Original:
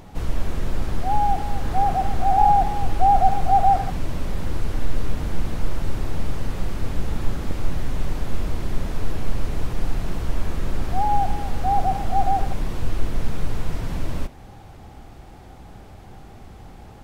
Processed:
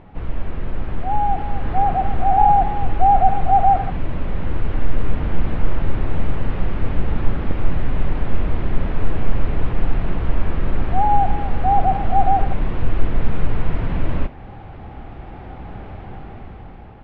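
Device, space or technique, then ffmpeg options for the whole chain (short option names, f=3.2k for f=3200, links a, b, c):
action camera in a waterproof case: -af "lowpass=f=2.8k:w=0.5412,lowpass=f=2.8k:w=1.3066,dynaudnorm=f=370:g=7:m=11.5dB,volume=-1dB" -ar 44100 -c:a aac -b:a 64k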